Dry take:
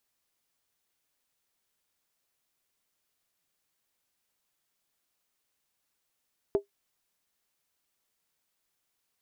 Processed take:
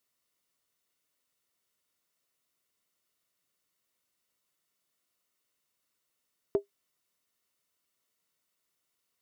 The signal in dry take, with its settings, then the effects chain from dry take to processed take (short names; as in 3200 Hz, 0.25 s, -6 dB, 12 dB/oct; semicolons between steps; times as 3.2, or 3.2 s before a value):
skin hit, lowest mode 401 Hz, decay 0.12 s, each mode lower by 11 dB, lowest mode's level -17 dB
notch comb 810 Hz